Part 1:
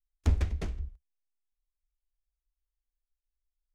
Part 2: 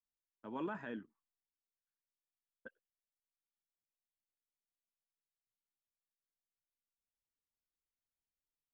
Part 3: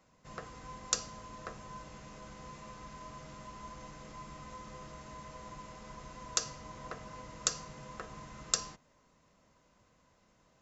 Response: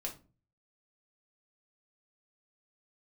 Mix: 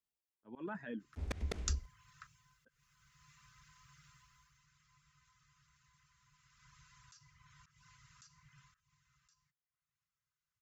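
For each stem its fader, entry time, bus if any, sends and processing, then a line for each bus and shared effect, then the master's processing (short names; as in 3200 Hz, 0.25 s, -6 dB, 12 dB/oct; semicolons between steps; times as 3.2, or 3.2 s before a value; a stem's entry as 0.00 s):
-3.5 dB, 0.90 s, no send, AGC gain up to 12.5 dB
0.0 dB, 0.00 s, no send, reverb removal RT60 2 s; low shelf 220 Hz +9 dB
4.12 s -7 dB -> 4.55 s -15 dB -> 6.31 s -15 dB -> 6.72 s -7 dB -> 8.62 s -7 dB -> 8.86 s -19.5 dB, 0.75 s, no send, reverb removal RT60 0.63 s; elliptic band-stop 140–1300 Hz, stop band 40 dB; auto duck -12 dB, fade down 0.45 s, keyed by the second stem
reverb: off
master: HPF 110 Hz 6 dB/oct; auto swell 0.183 s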